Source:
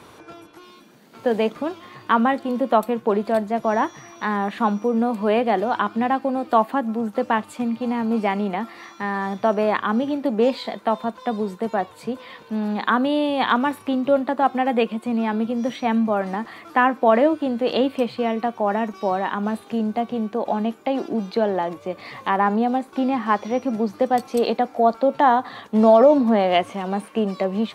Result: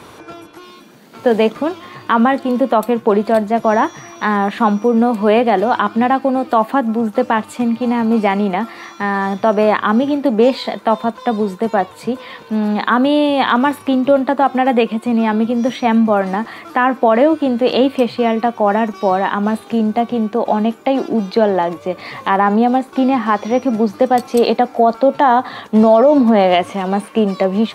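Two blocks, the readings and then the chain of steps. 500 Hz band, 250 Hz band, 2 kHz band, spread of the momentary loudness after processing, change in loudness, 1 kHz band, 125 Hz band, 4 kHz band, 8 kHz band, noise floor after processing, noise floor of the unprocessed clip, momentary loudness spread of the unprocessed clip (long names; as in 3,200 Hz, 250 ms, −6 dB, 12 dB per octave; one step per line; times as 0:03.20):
+6.0 dB, +7.0 dB, +6.0 dB, 6 LU, +6.5 dB, +6.0 dB, +7.5 dB, +6.5 dB, can't be measured, −39 dBFS, −47 dBFS, 8 LU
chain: boost into a limiter +9 dB
level −1.5 dB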